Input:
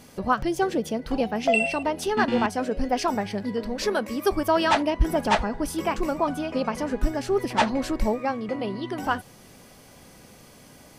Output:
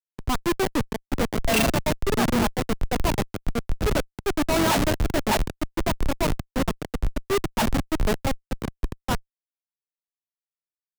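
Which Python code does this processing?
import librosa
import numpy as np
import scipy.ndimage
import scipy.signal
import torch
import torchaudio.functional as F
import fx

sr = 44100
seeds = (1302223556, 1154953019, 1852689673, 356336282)

y = fx.schmitt(x, sr, flips_db=-22.0)
y = fx.band_widen(y, sr, depth_pct=100)
y = y * librosa.db_to_amplitude(5.0)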